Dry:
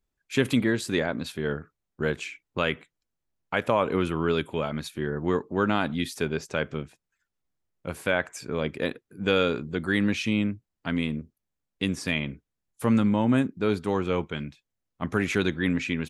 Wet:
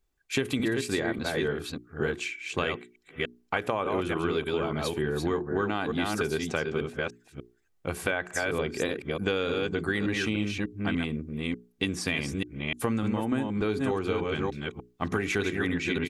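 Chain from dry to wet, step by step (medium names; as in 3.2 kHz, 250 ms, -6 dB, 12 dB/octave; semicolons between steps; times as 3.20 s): chunks repeated in reverse 296 ms, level -4.5 dB; hum notches 60/120/180/240/300/360/420 Hz; comb 2.6 ms, depth 32%; compression, threshold -28 dBFS, peak gain reduction 11 dB; trim +3.5 dB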